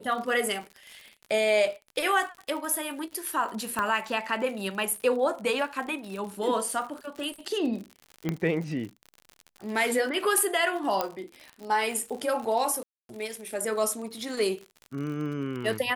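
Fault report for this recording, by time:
crackle 65 per s -35 dBFS
3.79 s: pop -15 dBFS
8.29 s: pop -15 dBFS
11.01 s: pop -12 dBFS
12.83–13.09 s: dropout 262 ms

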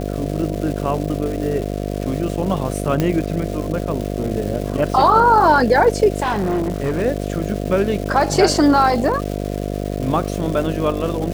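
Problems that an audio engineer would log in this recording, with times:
buzz 50 Hz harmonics 14 -24 dBFS
crackle 540 per s -27 dBFS
3.00 s: pop -6 dBFS
6.22–7.02 s: clipped -15.5 dBFS

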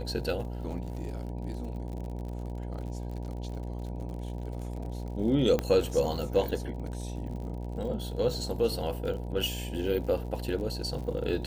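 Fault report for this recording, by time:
buzz 60 Hz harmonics 16 -36 dBFS
crackle 48 per s -39 dBFS
5.59 s: pop -15 dBFS

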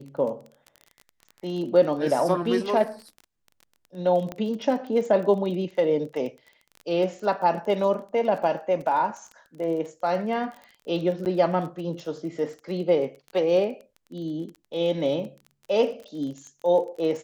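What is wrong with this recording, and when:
crackle 27 per s -34 dBFS
4.32 s: pop -19 dBFS
11.25–11.26 s: dropout 9.1 ms

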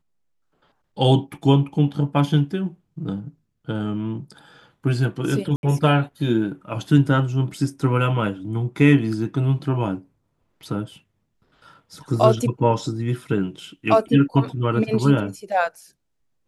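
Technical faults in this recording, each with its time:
5.56–5.63 s: dropout 71 ms

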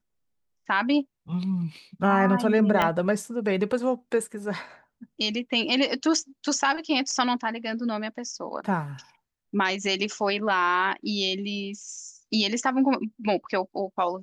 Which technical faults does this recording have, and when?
2.82 s: pop -10 dBFS

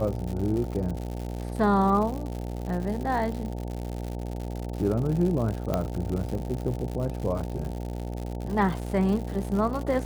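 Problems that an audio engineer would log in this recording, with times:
buzz 60 Hz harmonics 15 -33 dBFS
crackle 150 per s -32 dBFS
5.74 s: pop -13 dBFS

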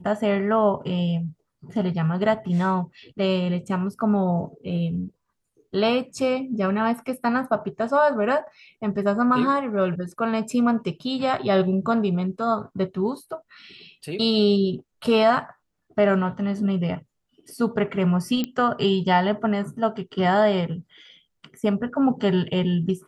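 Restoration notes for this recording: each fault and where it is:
18.44 s: pop -13 dBFS

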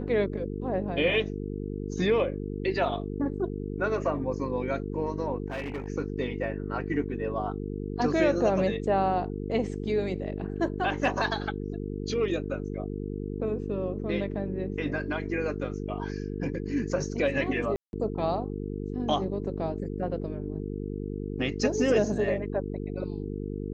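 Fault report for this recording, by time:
buzz 50 Hz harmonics 9 -34 dBFS
5.48–5.88 s: clipped -29.5 dBFS
17.76–17.93 s: dropout 171 ms

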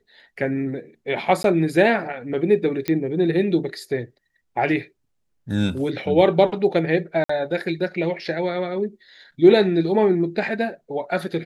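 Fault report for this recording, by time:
1.43–1.44 s: dropout
2.88 s: pop -10 dBFS
7.24–7.29 s: dropout 54 ms

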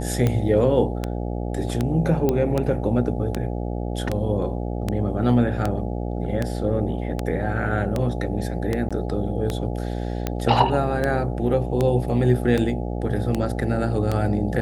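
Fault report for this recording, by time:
buzz 60 Hz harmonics 14 -27 dBFS
tick 78 rpm -10 dBFS
2.29 s: pop -9 dBFS
8.89–8.91 s: dropout 16 ms

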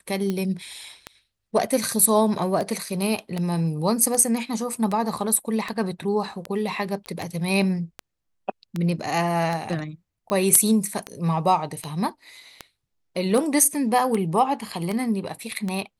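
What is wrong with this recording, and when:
tick 78 rpm -14 dBFS
7.06 s: pop -21 dBFS

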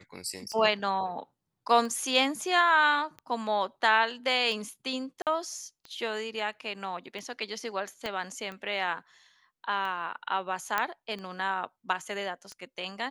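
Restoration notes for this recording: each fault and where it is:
tick 45 rpm -27 dBFS
5.22–5.27 s: dropout 48 ms
8.06 s: pop -19 dBFS
10.78 s: pop -12 dBFS

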